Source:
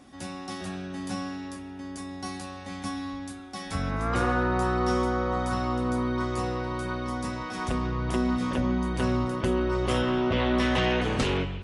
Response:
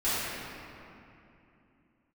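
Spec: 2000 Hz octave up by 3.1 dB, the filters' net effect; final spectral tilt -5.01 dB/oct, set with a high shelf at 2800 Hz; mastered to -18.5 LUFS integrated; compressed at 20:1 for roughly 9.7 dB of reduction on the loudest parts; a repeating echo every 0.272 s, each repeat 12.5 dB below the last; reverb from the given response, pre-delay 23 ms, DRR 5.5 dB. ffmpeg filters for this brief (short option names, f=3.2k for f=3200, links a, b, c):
-filter_complex "[0:a]equalizer=f=2k:t=o:g=5.5,highshelf=f=2.8k:g=-3,acompressor=threshold=-30dB:ratio=20,aecho=1:1:272|544|816:0.237|0.0569|0.0137,asplit=2[a][b];[1:a]atrim=start_sample=2205,adelay=23[c];[b][c]afir=irnorm=-1:irlink=0,volume=-17.5dB[d];[a][d]amix=inputs=2:normalize=0,volume=15dB"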